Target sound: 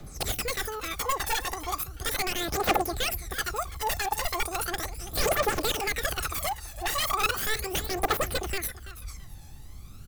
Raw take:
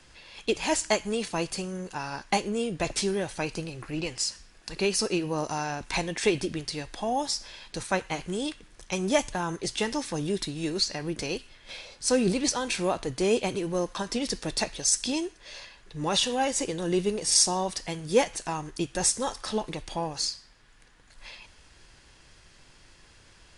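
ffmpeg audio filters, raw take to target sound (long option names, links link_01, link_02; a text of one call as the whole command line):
ffmpeg -i in.wav -filter_complex "[0:a]lowshelf=frequency=120:gain=5.5,acrossover=split=200|1200[link_01][link_02][link_03];[link_01]acompressor=threshold=-43dB:ratio=6[link_04];[link_04][link_02][link_03]amix=inputs=3:normalize=0,aeval=exprs='(mod(13.3*val(0)+1,2)-1)/13.3':channel_layout=same,asetrate=103194,aresample=44100,asplit=2[link_05][link_06];[link_06]adynamicsmooth=sensitivity=4:basefreq=1800,volume=-2dB[link_07];[link_05][link_07]amix=inputs=2:normalize=0,asuperstop=centerf=960:order=4:qfactor=6.6,aecho=1:1:333|666|999:0.188|0.0452|0.0108,aphaser=in_gain=1:out_gain=1:delay=1.2:decay=0.65:speed=0.37:type=triangular,volume=-2.5dB" out.wav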